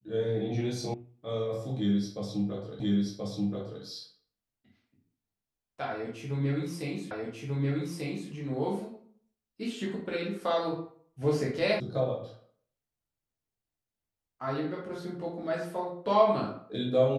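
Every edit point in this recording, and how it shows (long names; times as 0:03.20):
0:00.94: cut off before it has died away
0:02.80: the same again, the last 1.03 s
0:07.11: the same again, the last 1.19 s
0:11.80: cut off before it has died away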